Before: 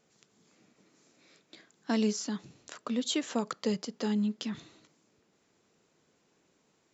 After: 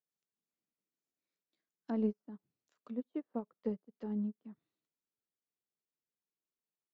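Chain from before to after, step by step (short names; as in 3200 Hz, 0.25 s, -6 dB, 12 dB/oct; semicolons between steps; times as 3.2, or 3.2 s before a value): treble ducked by the level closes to 870 Hz, closed at -31.5 dBFS; upward expander 2.5:1, over -46 dBFS; gain -2.5 dB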